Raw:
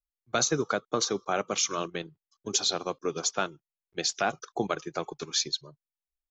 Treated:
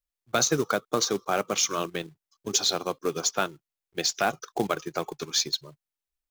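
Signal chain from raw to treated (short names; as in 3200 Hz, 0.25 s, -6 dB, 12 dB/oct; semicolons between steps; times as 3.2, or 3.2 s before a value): short-mantissa float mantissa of 2-bit; gain +2.5 dB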